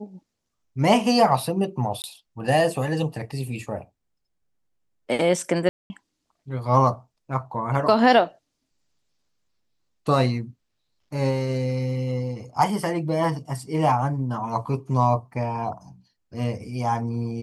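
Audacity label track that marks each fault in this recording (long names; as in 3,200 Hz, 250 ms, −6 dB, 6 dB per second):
2.020000	2.040000	drop-out 19 ms
5.690000	5.900000	drop-out 210 ms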